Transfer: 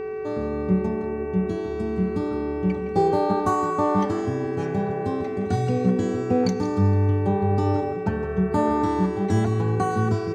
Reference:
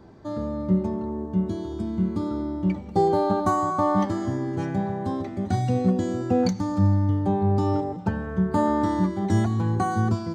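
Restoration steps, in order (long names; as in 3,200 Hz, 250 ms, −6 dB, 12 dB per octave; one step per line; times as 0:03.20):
hum removal 381.8 Hz, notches 7
notch filter 430 Hz, Q 30
echo removal 164 ms −12 dB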